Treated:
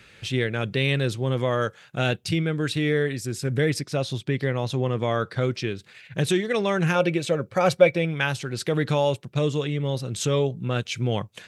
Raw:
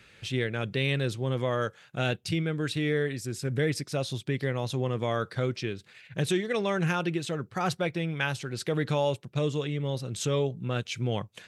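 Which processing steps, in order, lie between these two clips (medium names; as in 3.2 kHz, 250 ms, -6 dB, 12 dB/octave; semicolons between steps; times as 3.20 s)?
3.79–5.42 s: treble shelf 7.4 kHz -7.5 dB; 6.95–8.05 s: small resonant body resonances 550/2300 Hz, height 14 dB; trim +4.5 dB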